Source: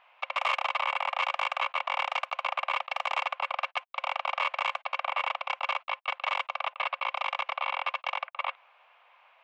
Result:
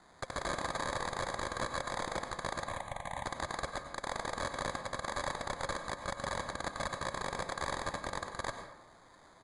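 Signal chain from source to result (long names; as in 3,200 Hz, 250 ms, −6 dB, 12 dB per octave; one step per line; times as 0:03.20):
brickwall limiter −25 dBFS, peak gain reduction 9.5 dB
sample-rate reduction 2,800 Hz, jitter 0%
downsampling to 22,050 Hz
0:02.65–0:03.24: phaser with its sweep stopped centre 1,400 Hz, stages 6
on a send: convolution reverb RT60 0.85 s, pre-delay 88 ms, DRR 6.5 dB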